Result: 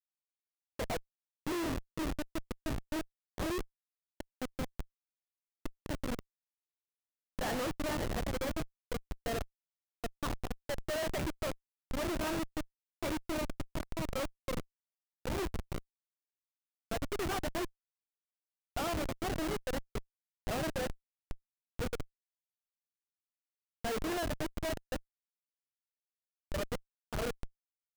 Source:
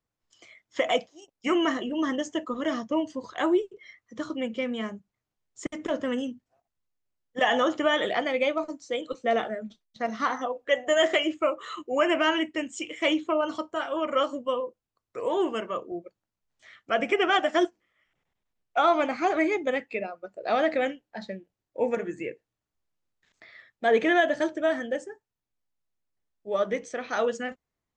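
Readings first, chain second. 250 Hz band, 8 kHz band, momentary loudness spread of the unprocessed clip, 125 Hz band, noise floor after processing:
-10.0 dB, -1.0 dB, 15 LU, no reading, under -85 dBFS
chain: knee-point frequency compression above 2.4 kHz 1.5:1; multi-head delay 67 ms, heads first and third, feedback 54%, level -19 dB; Schmitt trigger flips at -23 dBFS; trim -5.5 dB

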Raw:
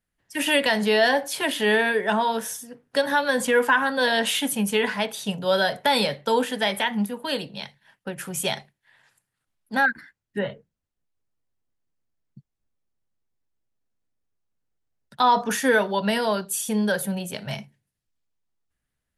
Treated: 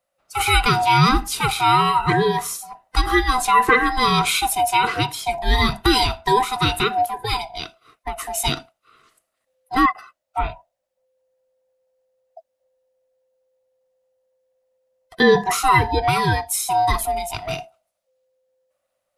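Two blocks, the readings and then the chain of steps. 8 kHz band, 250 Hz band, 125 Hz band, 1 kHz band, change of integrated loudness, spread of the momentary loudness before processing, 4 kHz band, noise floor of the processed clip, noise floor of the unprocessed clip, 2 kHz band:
+4.5 dB, +1.5 dB, +11.5 dB, +8.0 dB, +4.0 dB, 14 LU, +3.5 dB, -78 dBFS, -82 dBFS, +1.5 dB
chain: split-band scrambler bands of 500 Hz; trim +4.5 dB

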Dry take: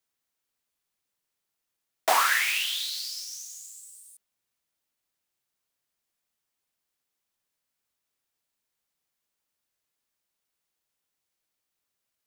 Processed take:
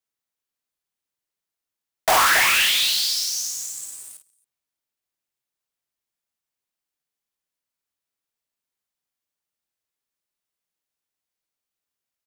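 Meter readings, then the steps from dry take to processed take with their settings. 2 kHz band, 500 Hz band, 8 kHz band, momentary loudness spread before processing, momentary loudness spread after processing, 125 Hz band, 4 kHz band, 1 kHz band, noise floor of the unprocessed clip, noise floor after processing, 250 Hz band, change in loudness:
+7.5 dB, +6.0 dB, +10.0 dB, 20 LU, 17 LU, no reading, +10.0 dB, +5.5 dB, -84 dBFS, under -85 dBFS, +11.0 dB, +7.5 dB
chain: loudspeakers at several distances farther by 18 m -5 dB, 94 m -10 dB; wavefolder -12.5 dBFS; waveshaping leveller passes 3

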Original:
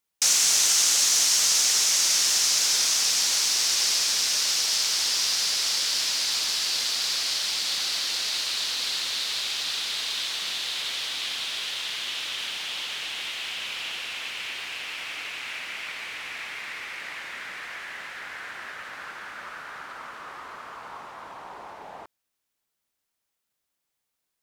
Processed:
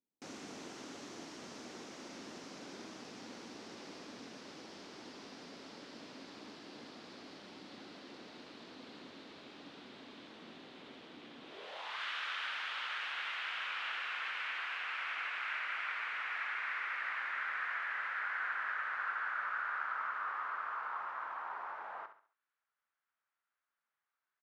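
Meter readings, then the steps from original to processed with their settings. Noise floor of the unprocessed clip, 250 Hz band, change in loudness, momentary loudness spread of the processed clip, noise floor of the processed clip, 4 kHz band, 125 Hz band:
-81 dBFS, +1.0 dB, -17.0 dB, 15 LU, under -85 dBFS, -24.0 dB, no reading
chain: treble shelf 3.8 kHz -8.5 dB; feedback delay 68 ms, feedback 35%, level -10.5 dB; band-pass sweep 260 Hz -> 1.4 kHz, 11.40–12.04 s; trim +4.5 dB

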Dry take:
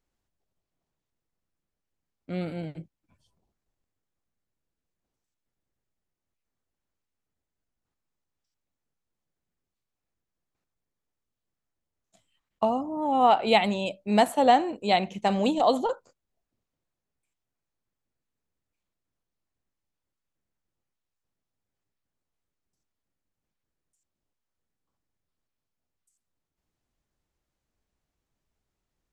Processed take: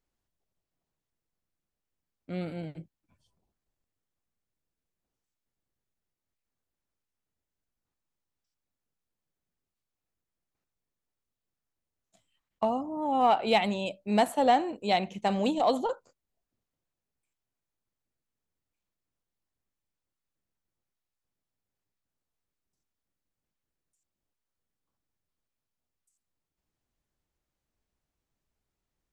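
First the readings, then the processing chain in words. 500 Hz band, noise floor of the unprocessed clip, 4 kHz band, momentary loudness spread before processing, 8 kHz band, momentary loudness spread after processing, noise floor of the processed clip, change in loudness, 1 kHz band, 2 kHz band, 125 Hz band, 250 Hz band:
-3.0 dB, under -85 dBFS, -3.5 dB, 14 LU, -3.0 dB, 13 LU, under -85 dBFS, -3.0 dB, -3.5 dB, -3.5 dB, -3.0 dB, -3.0 dB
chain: in parallel at -9 dB: hard clipper -17.5 dBFS, distortion -12 dB; on the sum: trim -5.5 dB

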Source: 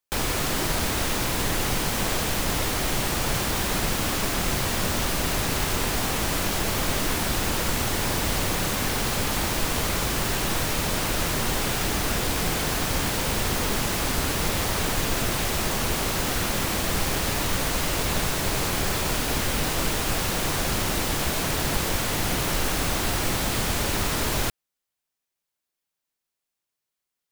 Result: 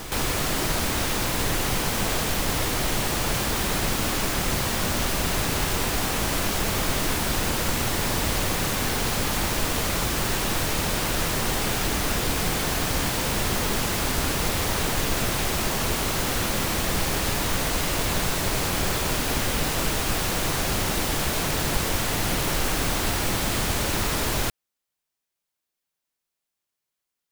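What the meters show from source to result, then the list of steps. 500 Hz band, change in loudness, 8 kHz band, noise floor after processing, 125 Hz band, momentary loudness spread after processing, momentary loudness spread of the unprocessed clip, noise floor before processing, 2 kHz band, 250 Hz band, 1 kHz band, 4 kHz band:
+0.5 dB, +0.5 dB, +0.5 dB, -84 dBFS, +0.5 dB, 0 LU, 0 LU, -85 dBFS, +0.5 dB, +0.5 dB, +0.5 dB, +0.5 dB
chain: reverse echo 189 ms -10.5 dB

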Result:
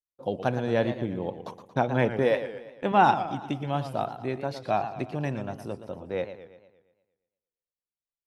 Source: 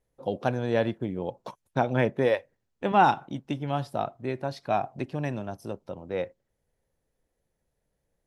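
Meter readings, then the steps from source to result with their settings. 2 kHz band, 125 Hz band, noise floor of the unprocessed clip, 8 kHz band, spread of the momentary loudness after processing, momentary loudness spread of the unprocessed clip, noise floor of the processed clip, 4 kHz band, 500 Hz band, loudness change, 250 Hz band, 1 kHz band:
+0.5 dB, +0.5 dB, -80 dBFS, no reading, 14 LU, 13 LU, under -85 dBFS, +0.5 dB, +0.5 dB, +0.5 dB, +0.5 dB, +0.5 dB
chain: expander -53 dBFS; modulated delay 116 ms, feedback 52%, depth 158 cents, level -11 dB

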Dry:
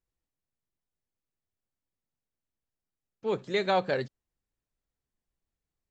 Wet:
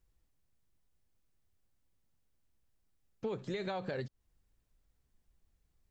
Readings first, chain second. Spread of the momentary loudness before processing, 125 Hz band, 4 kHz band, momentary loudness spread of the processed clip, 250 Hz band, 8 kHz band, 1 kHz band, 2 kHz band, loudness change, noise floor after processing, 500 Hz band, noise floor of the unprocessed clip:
10 LU, -3.0 dB, -12.0 dB, 5 LU, -5.5 dB, no reading, -13.5 dB, -11.5 dB, -10.0 dB, -78 dBFS, -10.0 dB, under -85 dBFS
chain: peak limiter -24 dBFS, peak gain reduction 8.5 dB; bass shelf 120 Hz +11 dB; compression 8:1, threshold -41 dBFS, peak gain reduction 13.5 dB; trim +6 dB

